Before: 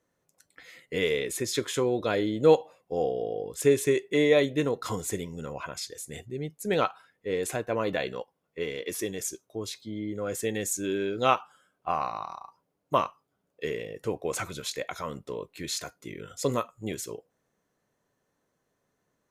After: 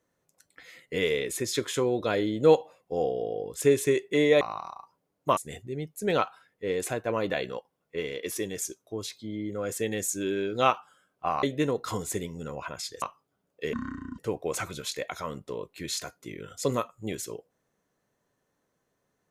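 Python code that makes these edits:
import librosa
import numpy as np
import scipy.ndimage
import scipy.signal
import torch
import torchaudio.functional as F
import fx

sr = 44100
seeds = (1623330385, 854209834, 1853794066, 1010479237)

y = fx.edit(x, sr, fx.swap(start_s=4.41, length_s=1.59, other_s=12.06, other_length_s=0.96),
    fx.speed_span(start_s=13.73, length_s=0.25, speed=0.55), tone=tone)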